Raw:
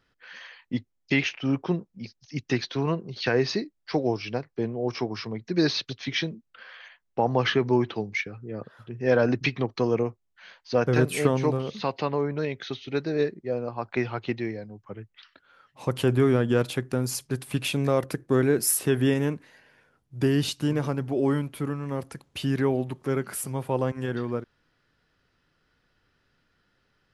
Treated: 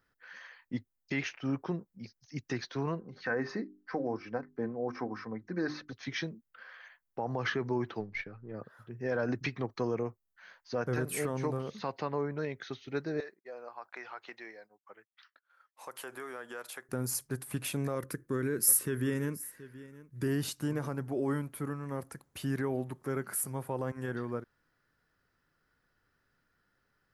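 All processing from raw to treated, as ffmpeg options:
ffmpeg -i in.wav -filter_complex "[0:a]asettb=1/sr,asplit=3[link_01][link_02][link_03];[link_01]atrim=end=3.004[link_04];[link_02]atrim=start=3:end=5.93,asetpts=PTS-STARTPTS,afade=type=in:duration=0.004:curve=qsin,afade=type=out:start_time=2.926:duration=0.004:curve=qsin,highshelf=frequency=2300:width_type=q:width=1.5:gain=-9.5,bandreject=frequency=50:width_type=h:width=6,bandreject=frequency=100:width_type=h:width=6,bandreject=frequency=150:width_type=h:width=6,bandreject=frequency=200:width_type=h:width=6,bandreject=frequency=250:width_type=h:width=6,bandreject=frequency=300:width_type=h:width=6,bandreject=frequency=350:width_type=h:width=6,bandreject=frequency=400:width_type=h:width=6,aecho=1:1:3.9:0.45,atrim=end_sample=129213[link_05];[link_03]atrim=start=5.926[link_06];[link_04][link_05]acrossfade=duration=0.004:curve1=hsin:curve2=qsin[link_07];[link_07][link_06]acrossfade=duration=0.004:curve1=qsin:curve2=hsin,asettb=1/sr,asplit=3[link_08][link_09][link_10];[link_08]atrim=end=8.004[link_11];[link_09]atrim=start=8:end=8.54,asetpts=PTS-STARTPTS,afade=type=in:duration=0.004:curve=qsin,afade=type=out:start_time=0.536:duration=0.004:curve=qsin,aeval=exprs='if(lt(val(0),0),0.708*val(0),val(0))':channel_layout=same,lowpass=frequency=4500:width=0.5412,lowpass=frequency=4500:width=1.3066[link_12];[link_10]atrim=start=8.536[link_13];[link_11][link_12]acrossfade=duration=0.004:curve1=hsin:curve2=qsin[link_14];[link_14][link_13]acrossfade=duration=0.004:curve1=qsin:curve2=hsin,asettb=1/sr,asplit=3[link_15][link_16][link_17];[link_15]atrim=end=13.204[link_18];[link_16]atrim=start=13.2:end=16.89,asetpts=PTS-STARTPTS,afade=type=in:duration=0.004:curve=qsin,afade=type=out:start_time=3.686:duration=0.004:curve=qsin,highpass=710,agate=range=-33dB:threshold=-54dB:ratio=3:release=100:detection=peak,acompressor=threshold=-33dB:ratio=3:attack=3.2:release=140:knee=1:detection=peak[link_19];[link_17]atrim=start=16.886[link_20];[link_18][link_19]acrossfade=duration=0.004:curve1=hsin:curve2=qsin[link_21];[link_21][link_20]acrossfade=duration=0.004:curve1=qsin:curve2=hsin,asettb=1/sr,asplit=3[link_22][link_23][link_24];[link_22]atrim=end=17.954[link_25];[link_23]atrim=start=17.95:end=20.28,asetpts=PTS-STARTPTS,afade=type=in:duration=0.004:curve=qsin,afade=type=out:start_time=2.326:duration=0.004:curve=qsin,equalizer=frequency=740:width_type=o:width=0.43:gain=-14.5,aecho=1:1:726:0.112,atrim=end_sample=102753[link_26];[link_24]atrim=start=20.276[link_27];[link_25][link_26]acrossfade=duration=0.004:curve1=hsin:curve2=qsin[link_28];[link_28][link_27]acrossfade=duration=0.004:curve1=qsin:curve2=hsin,highshelf=frequency=2200:width_type=q:width=1.5:gain=-8,alimiter=limit=-16dB:level=0:latency=1:release=44,aemphasis=mode=production:type=75fm,volume=-6.5dB" out.wav

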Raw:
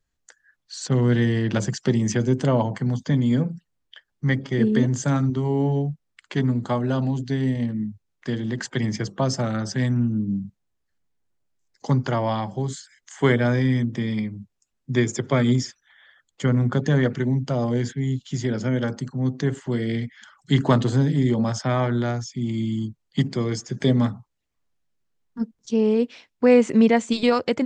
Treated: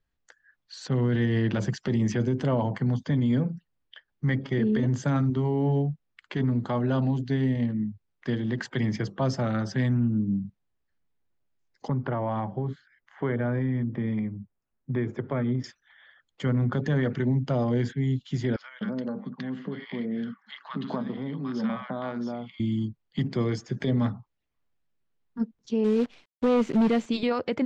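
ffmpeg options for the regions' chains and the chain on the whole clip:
ffmpeg -i in.wav -filter_complex "[0:a]asettb=1/sr,asplit=3[link_01][link_02][link_03];[link_01]atrim=end=11.884[link_04];[link_02]atrim=start=11.88:end=15.64,asetpts=PTS-STARTPTS,afade=type=in:duration=0.004:curve=qsin,afade=type=out:start_time=3.756:duration=0.004:curve=qsin,lowpass=1700,acompressor=threshold=-23dB:ratio=3:attack=3.2:release=140:knee=1:detection=peak[link_05];[link_03]atrim=start=15.636[link_06];[link_04][link_05]acrossfade=duration=0.004:curve1=hsin:curve2=qsin[link_07];[link_07][link_06]acrossfade=duration=0.004:curve1=qsin:curve2=hsin,asettb=1/sr,asplit=3[link_08][link_09][link_10];[link_08]atrim=end=18.564[link_11];[link_09]atrim=start=18.56:end=22.6,asetpts=PTS-STARTPTS,afade=type=in:duration=0.004:curve=qsin,afade=type=out:start_time=4.036:duration=0.004:curve=qsin,acompressor=threshold=-26dB:ratio=3:attack=3.2:release=140:knee=1:detection=peak,highpass=frequency=180:width=0.5412,highpass=frequency=180:width=1.3066,equalizer=frequency=200:width_type=q:width=4:gain=8,equalizer=frequency=340:width_type=q:width=4:gain=-7,equalizer=frequency=1100:width_type=q:width=4:gain=6,lowpass=frequency=4700:width=0.5412,lowpass=frequency=4700:width=1.3066,acrossover=split=1100[link_12][link_13];[link_12]adelay=250[link_14];[link_14][link_13]amix=inputs=2:normalize=0,atrim=end_sample=178164[link_15];[link_10]atrim=start=22.596[link_16];[link_11][link_15]acrossfade=duration=0.004:curve1=hsin:curve2=qsin[link_17];[link_17][link_16]acrossfade=duration=0.004:curve1=qsin:curve2=hsin,asettb=1/sr,asplit=3[link_18][link_19][link_20];[link_18]atrim=end=25.844[link_21];[link_19]atrim=start=25.84:end=27.06,asetpts=PTS-STARTPTS,afade=type=in:duration=0.004:curve=qsin,afade=type=out:start_time=1.216:duration=0.004:curve=qsin,equalizer=frequency=1200:width=1.1:gain=-12,asoftclip=type=hard:threshold=-15.5dB,acrusher=bits=7:dc=4:mix=0:aa=0.000001[link_22];[link_20]atrim=start=27.056[link_23];[link_21][link_22]acrossfade=duration=0.004:curve1=hsin:curve2=qsin[link_24];[link_24][link_23]acrossfade=duration=0.004:curve1=qsin:curve2=hsin,alimiter=limit=-16dB:level=0:latency=1:release=19,lowpass=3800,volume=-1.5dB" out.wav

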